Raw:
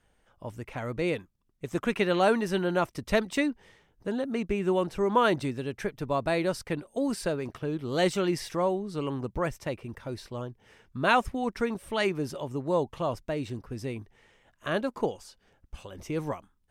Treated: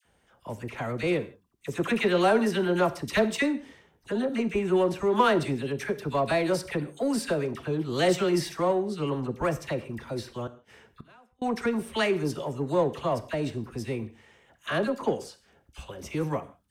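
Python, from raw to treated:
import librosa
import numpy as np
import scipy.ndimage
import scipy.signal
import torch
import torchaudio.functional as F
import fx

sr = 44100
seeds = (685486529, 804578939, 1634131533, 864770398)

p1 = scipy.signal.sosfilt(scipy.signal.butter(2, 66.0, 'highpass', fs=sr, output='sos'), x)
p2 = fx.dispersion(p1, sr, late='lows', ms=51.0, hz=1200.0)
p3 = 10.0 ** (-30.0 / 20.0) * np.tanh(p2 / 10.0 ** (-30.0 / 20.0))
p4 = p2 + (p3 * 10.0 ** (-6.0 / 20.0))
p5 = fx.gate_flip(p4, sr, shuts_db=-31.0, range_db=-34, at=(10.47, 11.42))
y = fx.rev_gated(p5, sr, seeds[0], gate_ms=190, shape='falling', drr_db=11.5)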